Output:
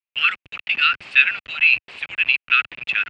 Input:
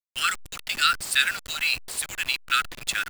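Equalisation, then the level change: high-pass 84 Hz 12 dB/octave; resonant low-pass 2.6 kHz, resonance Q 5.5; distance through air 63 m; -2.0 dB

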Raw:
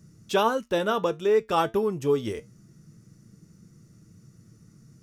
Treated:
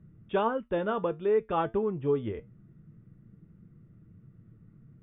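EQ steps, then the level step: brick-wall FIR low-pass 3.7 kHz; distance through air 490 m; bass shelf 69 Hz +9 dB; -3.0 dB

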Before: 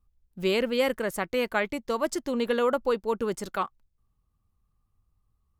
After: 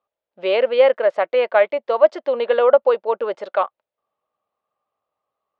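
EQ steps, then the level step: resonant high-pass 590 Hz, resonance Q 4.6; low-pass 3.6 kHz 24 dB/octave; +4.0 dB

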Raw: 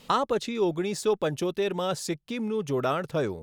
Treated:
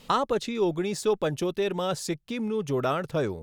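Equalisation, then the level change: bass shelf 62 Hz +8 dB; 0.0 dB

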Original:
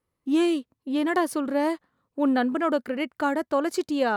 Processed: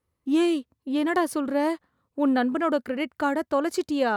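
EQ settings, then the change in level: peaking EQ 78 Hz +8 dB; 0.0 dB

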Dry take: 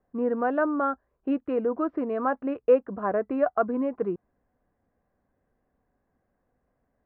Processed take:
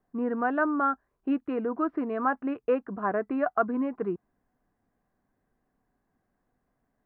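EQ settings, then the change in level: dynamic bell 1.6 kHz, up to +3 dB, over -42 dBFS, Q 1.5; peaking EQ 69 Hz -14 dB 0.44 oct; peaking EQ 530 Hz -8 dB 0.42 oct; 0.0 dB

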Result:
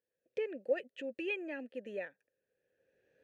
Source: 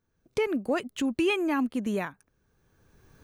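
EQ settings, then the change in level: vowel filter e; +1.0 dB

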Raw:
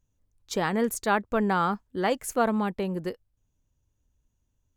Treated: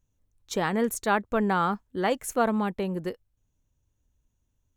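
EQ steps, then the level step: band-stop 4.8 kHz, Q 12; 0.0 dB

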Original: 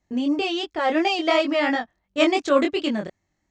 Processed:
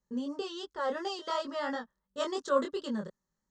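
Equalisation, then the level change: static phaser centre 470 Hz, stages 8; -6.5 dB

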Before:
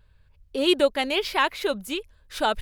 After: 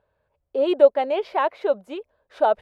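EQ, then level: band-pass filter 630 Hz, Q 2.4; +8.5 dB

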